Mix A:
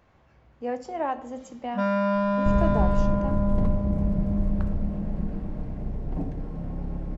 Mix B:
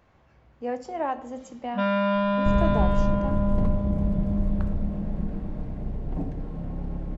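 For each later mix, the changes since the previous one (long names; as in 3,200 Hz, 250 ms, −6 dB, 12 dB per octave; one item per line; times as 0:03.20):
first sound: add low-pass with resonance 3,300 Hz, resonance Q 3.4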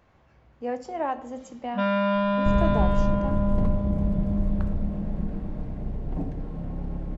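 nothing changed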